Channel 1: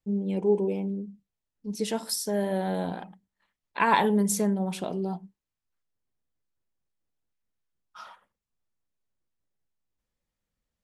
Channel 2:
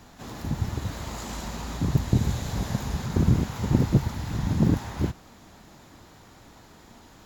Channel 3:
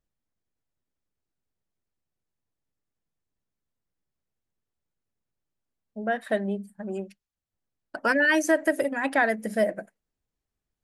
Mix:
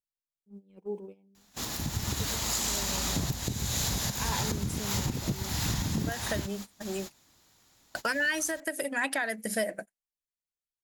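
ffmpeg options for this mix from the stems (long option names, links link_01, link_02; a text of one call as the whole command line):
ffmpeg -i stem1.wav -i stem2.wav -i stem3.wav -filter_complex "[0:a]highshelf=frequency=4900:gain=-9,adelay=400,volume=-13dB[link_01];[1:a]adelay=1350,volume=0.5dB[link_02];[2:a]volume=-3dB[link_03];[link_02][link_03]amix=inputs=2:normalize=0,highshelf=frequency=2300:gain=8,acompressor=threshold=-26dB:ratio=6,volume=0dB[link_04];[link_01][link_04]amix=inputs=2:normalize=0,agate=range=-20dB:threshold=-38dB:ratio=16:detection=peak,highshelf=frequency=2600:gain=9,alimiter=limit=-19dB:level=0:latency=1:release=369" out.wav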